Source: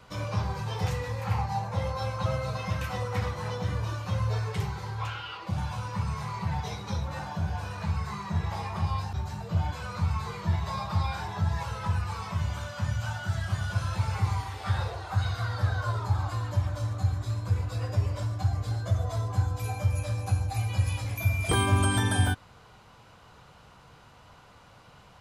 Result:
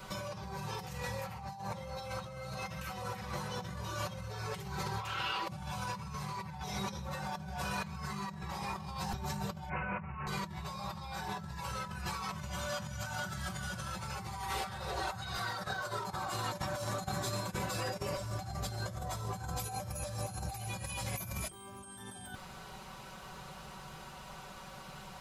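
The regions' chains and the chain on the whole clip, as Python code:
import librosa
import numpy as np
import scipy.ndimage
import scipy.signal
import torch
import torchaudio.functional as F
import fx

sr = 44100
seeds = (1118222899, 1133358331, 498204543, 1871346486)

y = fx.chain(x, sr, fx.cvsd(bps=32000),
    fx.highpass(hz=50.0, slope=12),
    fx.resample_bad(factor=8, down='none', up='filtered'), at=(9.69, 10.27))
y = fx.chain(y, sr, fx.highpass(hz=160.0, slope=12),
    fx.over_compress(threshold_db=-36.0, ratio=-0.5),
    fx.clip_hard(threshold_db=-28.0), at=(15.37, 18.17))
y = fx.high_shelf(y, sr, hz=8300.0, db=11.0)
y = y + 0.86 * np.pad(y, (int(5.3 * sr / 1000.0), 0))[:len(y)]
y = fx.over_compress(y, sr, threshold_db=-38.0, ratio=-1.0)
y = y * librosa.db_to_amplitude(-2.5)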